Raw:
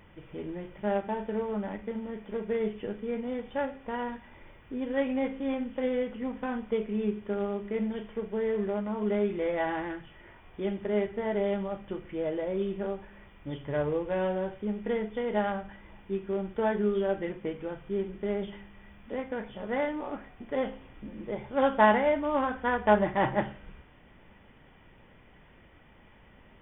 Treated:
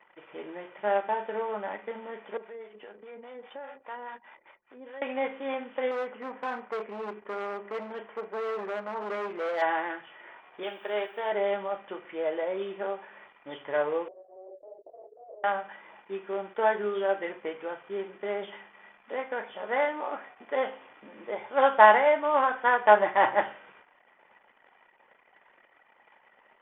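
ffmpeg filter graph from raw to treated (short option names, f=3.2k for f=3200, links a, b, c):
-filter_complex "[0:a]asettb=1/sr,asplit=3[a][b][c];[a]atrim=end=2.374[d];[b]atrim=start=2.37:end=5.02,asetpts=PTS-STARTPTS,afade=t=in:d=0.004:c=qsin,afade=t=out:st=2.646:d=0.004:c=qsin,acompressor=threshold=-35dB:ratio=10:attack=3.2:release=140:knee=1:detection=peak,acrossover=split=600[e][f];[e]aeval=exprs='val(0)*(1-0.7/2+0.7/2*cos(2*PI*4.9*n/s))':c=same[g];[f]aeval=exprs='val(0)*(1-0.7/2-0.7/2*cos(2*PI*4.9*n/s))':c=same[h];[g][h]amix=inputs=2:normalize=0[i];[c]atrim=start=5.016[j];[d][i]acrossfade=d=0.004:c1=hsin:c2=qsin[k];[k][j]acrossfade=d=0.004:c1=qsin:c2=hsin,asettb=1/sr,asplit=3[l][m][n];[l]atrim=end=5.914[o];[m]atrim=start=5.91:end=9.62,asetpts=PTS-STARTPTS,afade=t=in:d=0.004:c=qsin,afade=t=out:st=3.706:d=0.004:c=qsin,lowpass=2.3k,volume=30dB,asoftclip=hard,volume=-30dB[p];[n]atrim=start=9.616[q];[o][p]acrossfade=d=0.004:c1=hsin:c2=qsin[r];[r][q]acrossfade=d=0.004:c1=qsin:c2=hsin,asettb=1/sr,asplit=3[s][t][u];[s]atrim=end=10.634[v];[t]atrim=start=10.63:end=11.32,asetpts=PTS-STARTPTS,afade=t=in:d=0.004:c=qsin,afade=t=out:st=0.686:d=0.004:c=qsin,aemphasis=mode=production:type=riaa,bandreject=f=2k:w=9.6[w];[u]atrim=start=11.316[x];[v][w]acrossfade=d=0.004:c1=hsin:c2=qsin[y];[y][x]acrossfade=d=0.004:c1=qsin:c2=hsin,asettb=1/sr,asplit=3[z][aa][ab];[z]atrim=end=14.084[ac];[aa]atrim=start=14.08:end=15.44,asetpts=PTS-STARTPTS,afade=t=in:d=0.004:c=qsin,afade=t=out:st=1.356:d=0.004:c=qsin,acompressor=threshold=-33dB:ratio=1.5:attack=3.2:release=140:knee=1:detection=peak,aeval=exprs='0.0133*(abs(mod(val(0)/0.0133+3,4)-2)-1)':c=same,asuperpass=centerf=470:order=8:qfactor=1.4[ad];[ab]atrim=start=15.436[ae];[ac][ad]acrossfade=d=0.004:c1=hsin:c2=qsin[af];[af][ae]acrossfade=d=0.004:c1=qsin:c2=hsin,highpass=710,anlmdn=0.0000631,lowpass=f=2k:p=1,volume=8.5dB"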